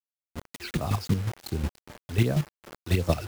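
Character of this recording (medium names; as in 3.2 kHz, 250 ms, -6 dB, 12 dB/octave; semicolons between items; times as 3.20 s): phasing stages 12, 2.7 Hz, lowest notch 180–3700 Hz; a quantiser's noise floor 6-bit, dither none; chopped level 5.5 Hz, depth 60%, duty 25%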